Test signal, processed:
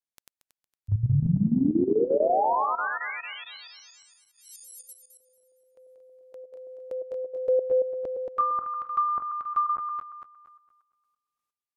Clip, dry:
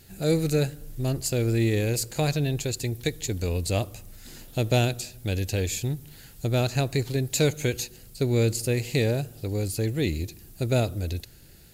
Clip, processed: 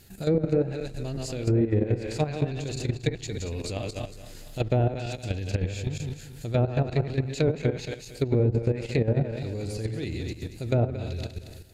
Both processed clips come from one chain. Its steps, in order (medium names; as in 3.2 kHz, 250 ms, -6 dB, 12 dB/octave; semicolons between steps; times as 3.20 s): backward echo that repeats 115 ms, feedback 60%, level -4.5 dB; level held to a coarse grid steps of 11 dB; low-pass that closes with the level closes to 920 Hz, closed at -20 dBFS; trim +1.5 dB